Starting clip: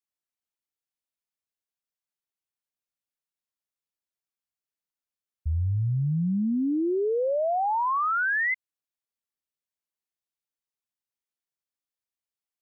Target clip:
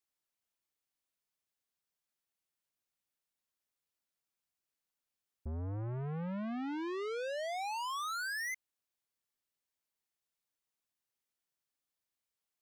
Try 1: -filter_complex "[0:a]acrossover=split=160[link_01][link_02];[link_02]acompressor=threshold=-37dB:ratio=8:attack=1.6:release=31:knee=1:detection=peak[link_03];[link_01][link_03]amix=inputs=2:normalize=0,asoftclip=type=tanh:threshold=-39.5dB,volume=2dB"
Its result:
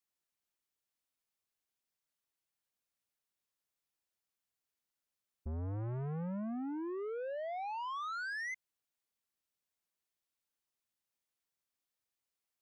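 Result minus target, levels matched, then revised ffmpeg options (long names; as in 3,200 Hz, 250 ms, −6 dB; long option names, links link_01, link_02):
downward compressor: peak gain reduction +12.5 dB
-af "asoftclip=type=tanh:threshold=-39.5dB,volume=2dB"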